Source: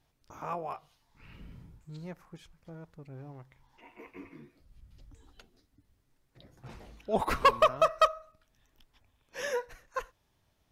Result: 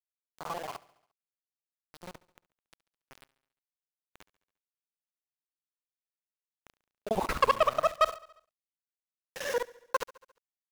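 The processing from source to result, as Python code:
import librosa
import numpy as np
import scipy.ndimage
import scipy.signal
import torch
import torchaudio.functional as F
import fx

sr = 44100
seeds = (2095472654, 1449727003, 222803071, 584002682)

p1 = fx.local_reverse(x, sr, ms=45.0)
p2 = np.where(np.abs(p1) >= 10.0 ** (-37.0 / 20.0), p1, 0.0)
p3 = fx.rider(p2, sr, range_db=4, speed_s=0.5)
p4 = p3 + fx.echo_feedback(p3, sr, ms=70, feedback_pct=60, wet_db=-21.0, dry=0)
y = p4 * librosa.db_to_amplitude(2.5)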